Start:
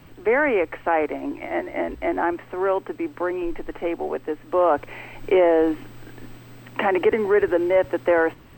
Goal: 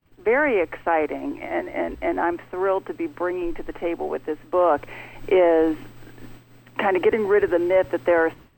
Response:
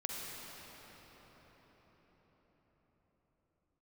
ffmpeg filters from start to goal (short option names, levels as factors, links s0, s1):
-af "agate=range=0.0224:threshold=0.0158:ratio=3:detection=peak"